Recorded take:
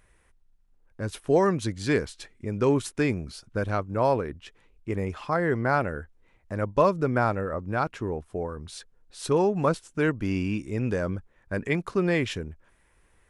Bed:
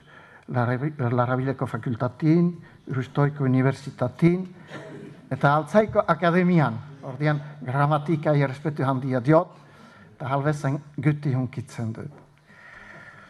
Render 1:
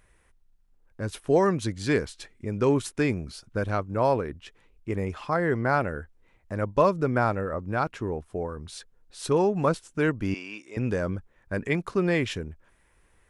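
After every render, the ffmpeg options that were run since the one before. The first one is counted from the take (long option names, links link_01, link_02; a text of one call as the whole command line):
ffmpeg -i in.wav -filter_complex "[0:a]asettb=1/sr,asplit=3[link_01][link_02][link_03];[link_01]atrim=end=10.344[link_04];[link_02]atrim=start=10.34:end=10.77,asetpts=PTS-STARTPTS,afade=type=in:duration=0.004:curve=qsin,afade=type=out:start_time=0.426:duration=0.004:curve=qsin,highpass=630,lowpass=7000[link_05];[link_03]atrim=start=10.766[link_06];[link_04][link_05]acrossfade=duration=0.004:curve1=hsin:curve2=qsin[link_07];[link_07][link_06]acrossfade=duration=0.004:curve1=qsin:curve2=hsin" out.wav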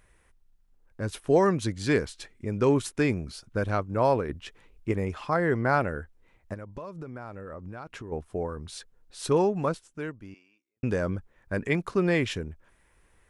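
ffmpeg -i in.wav -filter_complex "[0:a]asplit=3[link_01][link_02][link_03];[link_01]afade=type=out:start_time=6.53:duration=0.02[link_04];[link_02]acompressor=threshold=-36dB:ratio=8:attack=3.2:release=140:knee=1:detection=peak,afade=type=in:start_time=6.53:duration=0.02,afade=type=out:start_time=8.11:duration=0.02[link_05];[link_03]afade=type=in:start_time=8.11:duration=0.02[link_06];[link_04][link_05][link_06]amix=inputs=3:normalize=0,asplit=4[link_07][link_08][link_09][link_10];[link_07]atrim=end=4.292[link_11];[link_08]atrim=start=4.288:end=4.922,asetpts=PTS-STARTPTS,volume=3.5dB[link_12];[link_09]atrim=start=4.918:end=10.83,asetpts=PTS-STARTPTS,afade=type=out:start_time=4.452:duration=1.46:curve=qua[link_13];[link_10]atrim=start=10.83,asetpts=PTS-STARTPTS,afade=type=in:duration=0.004:curve=hsin[link_14];[link_11][link_12]acrossfade=duration=0.004:curve1=hsin:curve2=hsin[link_15];[link_13][link_14]concat=n=2:v=0:a=1[link_16];[link_15][link_16]acrossfade=duration=0.004:curve1=hsin:curve2=hsin" out.wav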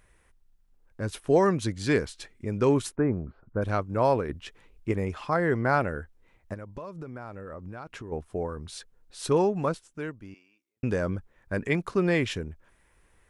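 ffmpeg -i in.wav -filter_complex "[0:a]asplit=3[link_01][link_02][link_03];[link_01]afade=type=out:start_time=2.94:duration=0.02[link_04];[link_02]lowpass=frequency=1400:width=0.5412,lowpass=frequency=1400:width=1.3066,afade=type=in:start_time=2.94:duration=0.02,afade=type=out:start_time=3.61:duration=0.02[link_05];[link_03]afade=type=in:start_time=3.61:duration=0.02[link_06];[link_04][link_05][link_06]amix=inputs=3:normalize=0" out.wav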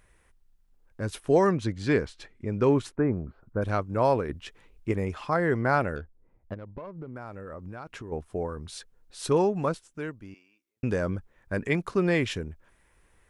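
ffmpeg -i in.wav -filter_complex "[0:a]asettb=1/sr,asplit=3[link_01][link_02][link_03];[link_01]atrim=end=1.514[link_04];[link_02]atrim=start=1.51:end=2.97,asetpts=PTS-STARTPTS,afade=type=in:duration=0.004:curve=qsin,afade=type=out:start_time=1.456:duration=0.004:curve=qsin,aemphasis=mode=reproduction:type=50fm[link_05];[link_03]atrim=start=2.966[link_06];[link_04][link_05]acrossfade=duration=0.004:curve1=hsin:curve2=qsin[link_07];[link_07][link_06]acrossfade=duration=0.004:curve1=qsin:curve2=hsin,asettb=1/sr,asplit=3[link_08][link_09][link_10];[link_08]atrim=end=5.964[link_11];[link_09]atrim=start=5.96:end=7.16,asetpts=PTS-STARTPTS,afade=type=in:duration=0.004:curve=qsin,afade=type=out:start_time=1.196:duration=0.004:curve=qsin,adynamicsmooth=sensitivity=3.5:basefreq=790[link_12];[link_10]atrim=start=7.156[link_13];[link_11][link_12]acrossfade=duration=0.004:curve1=hsin:curve2=qsin[link_14];[link_14][link_13]acrossfade=duration=0.004:curve1=qsin:curve2=hsin" out.wav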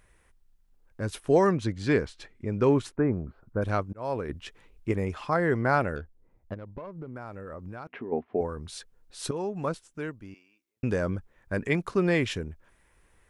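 ffmpeg -i in.wav -filter_complex "[0:a]asettb=1/sr,asplit=3[link_01][link_02][link_03];[link_01]atrim=end=7.874[link_04];[link_02]atrim=start=7.87:end=8.41,asetpts=PTS-STARTPTS,afade=type=in:duration=0.004:curve=qsin,afade=type=out:start_time=0.536:duration=0.004:curve=qsin,highpass=180,equalizer=frequency=240:width_type=q:width=4:gain=10,equalizer=frequency=410:width_type=q:width=4:gain=6,equalizer=frequency=730:width_type=q:width=4:gain=7,equalizer=frequency=1400:width_type=q:width=4:gain=-3,equalizer=frequency=2000:width_type=q:width=4:gain=4,lowpass=frequency=2700:width=0.5412,lowpass=frequency=2700:width=1.3066[link_05];[link_03]atrim=start=8.406[link_06];[link_04][link_05]acrossfade=duration=0.004:curve1=hsin:curve2=qsin[link_07];[link_07][link_06]acrossfade=duration=0.004:curve1=qsin:curve2=hsin,asplit=3[link_08][link_09][link_10];[link_08]atrim=end=3.93,asetpts=PTS-STARTPTS,afade=type=out:start_time=3.926:duration=0.004:curve=hsin[link_11];[link_09]atrim=start=3.93:end=9.31,asetpts=PTS-STARTPTS,afade=type=in:duration=0.42,afade=type=out:start_time=5.376:duration=0.004:curve=hsin:silence=0.199526[link_12];[link_10]atrim=start=9.31,asetpts=PTS-STARTPTS,afade=type=in:duration=0.54:silence=0.199526[link_13];[link_11][link_12][link_13]concat=n=3:v=0:a=1" out.wav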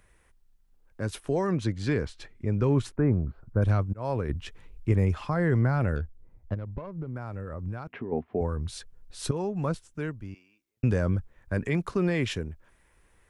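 ffmpeg -i in.wav -filter_complex "[0:a]acrossover=split=150[link_01][link_02];[link_01]dynaudnorm=framelen=560:gausssize=9:maxgain=10.5dB[link_03];[link_02]alimiter=limit=-19.5dB:level=0:latency=1:release=29[link_04];[link_03][link_04]amix=inputs=2:normalize=0" out.wav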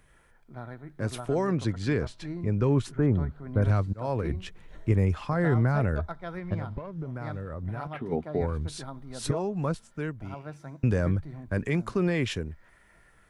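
ffmpeg -i in.wav -i bed.wav -filter_complex "[1:a]volume=-17.5dB[link_01];[0:a][link_01]amix=inputs=2:normalize=0" out.wav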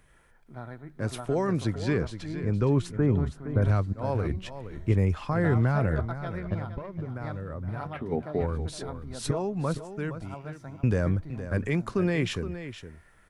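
ffmpeg -i in.wav -af "aecho=1:1:466:0.266" out.wav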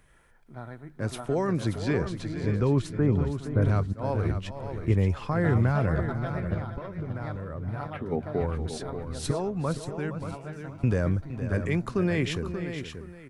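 ffmpeg -i in.wav -af "aecho=1:1:582:0.355" out.wav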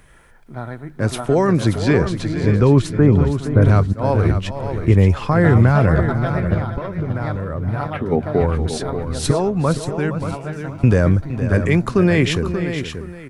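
ffmpeg -i in.wav -af "volume=11dB,alimiter=limit=-3dB:level=0:latency=1" out.wav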